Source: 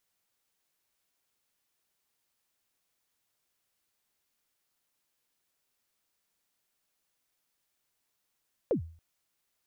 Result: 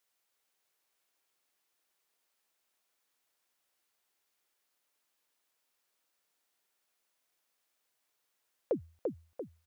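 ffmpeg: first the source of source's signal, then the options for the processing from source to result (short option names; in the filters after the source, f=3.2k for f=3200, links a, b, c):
-f lavfi -i "aevalsrc='0.0891*pow(10,-3*t/0.45)*sin(2*PI*(570*0.104/log(82/570)*(exp(log(82/570)*min(t,0.104)/0.104)-1)+82*max(t-0.104,0)))':d=0.28:s=44100"
-filter_complex "[0:a]bass=f=250:g=-12,treble=f=4k:g=-1,asplit=2[a][b];[b]adelay=342,lowpass=f=2k:p=1,volume=-3dB,asplit=2[c][d];[d]adelay=342,lowpass=f=2k:p=1,volume=0.47,asplit=2[e][f];[f]adelay=342,lowpass=f=2k:p=1,volume=0.47,asplit=2[g][h];[h]adelay=342,lowpass=f=2k:p=1,volume=0.47,asplit=2[i][j];[j]adelay=342,lowpass=f=2k:p=1,volume=0.47,asplit=2[k][l];[l]adelay=342,lowpass=f=2k:p=1,volume=0.47[m];[c][e][g][i][k][m]amix=inputs=6:normalize=0[n];[a][n]amix=inputs=2:normalize=0"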